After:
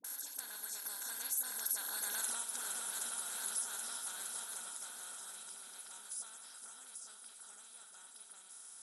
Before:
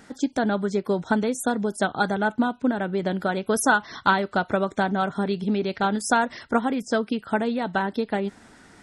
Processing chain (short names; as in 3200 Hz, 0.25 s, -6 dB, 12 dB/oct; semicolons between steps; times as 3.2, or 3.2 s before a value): per-bin compression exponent 0.2; Doppler pass-by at 2.23, 17 m/s, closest 1.2 m; pre-emphasis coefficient 0.9; swung echo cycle 0.775 s, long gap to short 1.5:1, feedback 48%, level -13 dB; on a send at -11 dB: reverb, pre-delay 3 ms; on the sum: compressor 6:1, threshold -48 dBFS, peak gain reduction 18.5 dB; tilt +4 dB/oct; notch 2900 Hz, Q 28; dispersion highs, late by 44 ms, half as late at 510 Hz; gain +2.5 dB